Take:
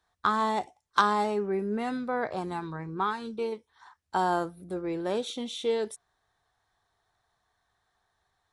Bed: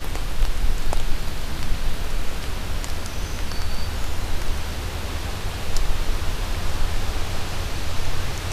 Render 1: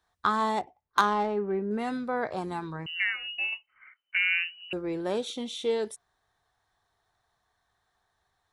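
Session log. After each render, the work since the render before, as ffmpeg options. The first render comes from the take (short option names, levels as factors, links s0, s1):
-filter_complex "[0:a]asettb=1/sr,asplit=3[s0][s1][s2];[s0]atrim=end=0.614[s3];[s1]atrim=start=0.61:end=1.71,asetpts=PTS-STARTPTS,afade=t=in:d=0.004:c=qsin,afade=t=out:st=1.096:d=0.004:c=qsin,adynamicsmooth=sensitivity=1.5:basefreq=1900[s4];[s2]atrim=start=1.706[s5];[s3][s4]acrossfade=d=0.004:c1=hsin:c2=qsin[s6];[s6][s5]acrossfade=d=0.004:c1=qsin:c2=hsin,asettb=1/sr,asplit=3[s7][s8][s9];[s7]atrim=end=2.864[s10];[s8]atrim=start=2.86:end=4.73,asetpts=PTS-STARTPTS,afade=t=in:d=0.004:c=qsin,afade=t=out:st=1.866:d=0.004:c=qsin,lowpass=f=2600:t=q:w=0.5098,lowpass=f=2600:t=q:w=0.6013,lowpass=f=2600:t=q:w=0.9,lowpass=f=2600:t=q:w=2.563,afreqshift=-3100[s11];[s9]atrim=start=4.726[s12];[s10][s11]acrossfade=d=0.004:c1=hsin:c2=qsin[s13];[s13][s12]acrossfade=d=0.004:c1=qsin:c2=hsin"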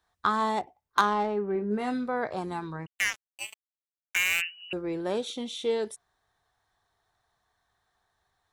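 -filter_complex "[0:a]asettb=1/sr,asplit=3[s0][s1][s2];[s0]atrim=end=1.534[s3];[s1]atrim=start=1.53:end=2.09,asetpts=PTS-STARTPTS,afade=t=in:d=0.004:c=qsin,afade=t=out:st=0.556:d=0.004:c=qsin,asplit=2[s4][s5];[s5]adelay=24,volume=0.398[s6];[s4][s6]amix=inputs=2:normalize=0,atrim=end_sample=24696[s7];[s2]atrim=start=2.086[s8];[s3][s7]acrossfade=d=0.004:c1=hsin:c2=qsin[s9];[s9][s8]acrossfade=d=0.004:c1=qsin:c2=hsin,asplit=3[s10][s11][s12];[s10]afade=t=out:st=2.85:d=0.02[s13];[s11]acrusher=bits=3:mix=0:aa=0.5,afade=t=in:st=2.85:d=0.02,afade=t=out:st=4.4:d=0.02[s14];[s12]afade=t=in:st=4.4:d=0.02[s15];[s13][s14][s15]amix=inputs=3:normalize=0"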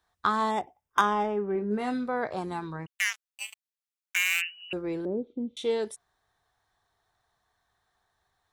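-filter_complex "[0:a]asettb=1/sr,asplit=3[s0][s1][s2];[s0]atrim=end=0.514[s3];[s1]atrim=start=0.51:end=1.58,asetpts=PTS-STARTPTS,afade=t=in:d=0.004:c=qsin,afade=t=out:st=1.066:d=0.004:c=qsin,asuperstop=centerf=4200:order=20:qfactor=4.4[s4];[s2]atrim=start=1.576[s5];[s3][s4]acrossfade=d=0.004:c1=hsin:c2=qsin[s6];[s6][s5]acrossfade=d=0.004:c1=qsin:c2=hsin,asettb=1/sr,asplit=3[s7][s8][s9];[s7]atrim=end=2.904[s10];[s8]atrim=start=2.9:end=4.49,asetpts=PTS-STARTPTS,afade=t=in:d=0.004:c=qsin,afade=t=out:st=1.586:d=0.004:c=qsin,highpass=1100[s11];[s9]atrim=start=4.486[s12];[s10][s11]acrossfade=d=0.004:c1=hsin:c2=qsin[s13];[s13][s12]acrossfade=d=0.004:c1=qsin:c2=hsin,asettb=1/sr,asplit=3[s14][s15][s16];[s14]atrim=end=5.054[s17];[s15]atrim=start=5.05:end=5.57,asetpts=PTS-STARTPTS,afade=t=in:d=0.004:c=qsin,afade=t=out:st=0.516:d=0.004:c=qsin,lowpass=f=330:t=q:w=1.5[s18];[s16]atrim=start=5.566[s19];[s17][s18]acrossfade=d=0.004:c1=hsin:c2=qsin[s20];[s20][s19]acrossfade=d=0.004:c1=qsin:c2=hsin"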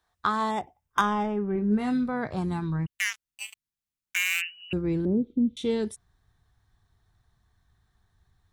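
-af "asubboost=boost=9:cutoff=200"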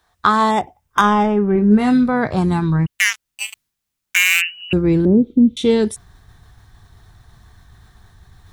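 -af "areverse,acompressor=mode=upward:threshold=0.00398:ratio=2.5,areverse,alimiter=level_in=3.98:limit=0.891:release=50:level=0:latency=1"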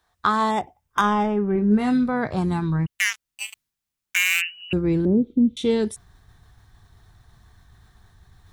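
-af "volume=0.501"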